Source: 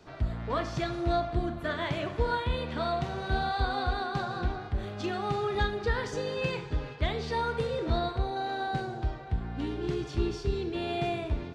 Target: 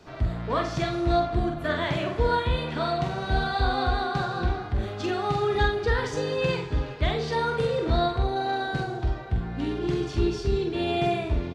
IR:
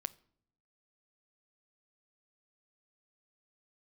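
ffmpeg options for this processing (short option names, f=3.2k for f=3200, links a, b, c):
-filter_complex "[0:a]asplit=2[a][b];[b]adelay=46,volume=-5dB[c];[a][c]amix=inputs=2:normalize=0,volume=3.5dB" -ar 48000 -c:a mp2 -b:a 128k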